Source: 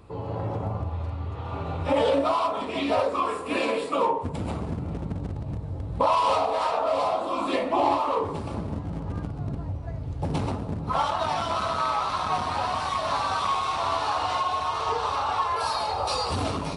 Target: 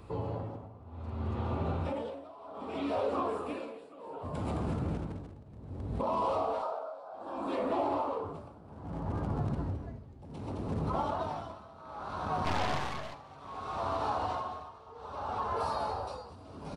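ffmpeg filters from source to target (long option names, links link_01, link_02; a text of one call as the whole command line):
ffmpeg -i in.wav -filter_complex "[0:a]asettb=1/sr,asplit=3[link_01][link_02][link_03];[link_01]atrim=end=8.434[link_04];[link_02]atrim=start=8.43:end=9.42,asetpts=PTS-STARTPTS,afade=type=in:duration=0.004:curve=qsin,afade=type=out:start_time=0.986:duration=0.004:curve=qsin,equalizer=frequency=840:width=1.2:gain=7[link_05];[link_03]atrim=start=9.416[link_06];[link_04][link_05]acrossfade=duration=0.004:curve1=hsin:curve2=qsin[link_07];[link_07][link_06]acrossfade=duration=0.004:curve1=qsin:curve2=hsin,acrossover=split=790[link_08][link_09];[link_08]alimiter=level_in=1dB:limit=-24dB:level=0:latency=1,volume=-1dB[link_10];[link_09]acompressor=threshold=-45dB:ratio=4[link_11];[link_10][link_11]amix=inputs=2:normalize=0,asettb=1/sr,asplit=3[link_12][link_13][link_14];[link_12]atrim=end=6.624[link_15];[link_13]atrim=start=6.62:end=7.14,asetpts=PTS-STARTPTS,afade=type=in:duration=0.004:curve=qsin,afade=type=out:start_time=0.516:duration=0.004:curve=qsin,highpass=240,equalizer=frequency=250:width_type=q:width=4:gain=-8,equalizer=frequency=610:width_type=q:width=4:gain=6,equalizer=frequency=1300:width_type=q:width=4:gain=10,equalizer=frequency=1900:width_type=q:width=4:gain=-10,equalizer=frequency=2800:width_type=q:width=4:gain=-9,equalizer=frequency=6700:width_type=q:width=4:gain=-4,lowpass=frequency=9000:width=0.5412,lowpass=frequency=9000:width=1.3066[link_16];[link_14]atrim=start=7.136[link_17];[link_15][link_16]acrossfade=duration=0.004:curve1=hsin:curve2=qsin[link_18];[link_18][link_17]acrossfade=duration=0.004:curve1=qsin:curve2=hsin,asplit=3[link_19][link_20][link_21];[link_19]afade=type=out:start_time=12.44:duration=0.02[link_22];[link_20]aeval=exprs='0.0794*(cos(1*acos(clip(val(0)/0.0794,-1,1)))-cos(1*PI/2))+0.02*(cos(8*acos(clip(val(0)/0.0794,-1,1)))-cos(8*PI/2))':channel_layout=same,afade=type=in:start_time=12.44:duration=0.02,afade=type=out:start_time=13.13:duration=0.02[link_23];[link_21]afade=type=in:start_time=13.13:duration=0.02[link_24];[link_22][link_23][link_24]amix=inputs=3:normalize=0,asplit=6[link_25][link_26][link_27][link_28][link_29][link_30];[link_26]adelay=215,afreqshift=140,volume=-9dB[link_31];[link_27]adelay=430,afreqshift=280,volume=-15.6dB[link_32];[link_28]adelay=645,afreqshift=420,volume=-22.1dB[link_33];[link_29]adelay=860,afreqshift=560,volume=-28.7dB[link_34];[link_30]adelay=1075,afreqshift=700,volume=-35.2dB[link_35];[link_25][link_31][link_32][link_33][link_34][link_35]amix=inputs=6:normalize=0,tremolo=f=0.64:d=0.9" out.wav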